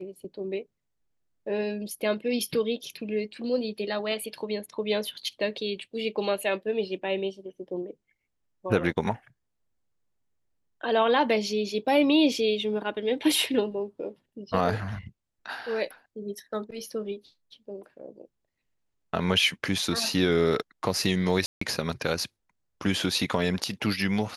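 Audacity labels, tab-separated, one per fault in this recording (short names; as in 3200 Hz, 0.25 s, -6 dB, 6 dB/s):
21.460000	21.610000	gap 0.154 s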